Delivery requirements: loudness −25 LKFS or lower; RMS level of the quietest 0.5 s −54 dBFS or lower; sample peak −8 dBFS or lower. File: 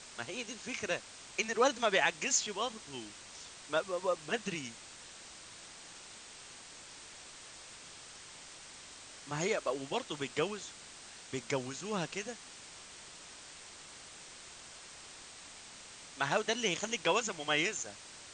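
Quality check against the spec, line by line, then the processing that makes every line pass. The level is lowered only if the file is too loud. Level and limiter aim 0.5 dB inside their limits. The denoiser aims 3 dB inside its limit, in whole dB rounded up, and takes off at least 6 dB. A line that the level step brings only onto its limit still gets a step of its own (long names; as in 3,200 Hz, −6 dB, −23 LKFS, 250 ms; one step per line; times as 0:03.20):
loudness −34.5 LKFS: in spec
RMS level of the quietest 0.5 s −52 dBFS: out of spec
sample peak −15.0 dBFS: in spec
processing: broadband denoise 6 dB, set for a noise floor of −52 dBFS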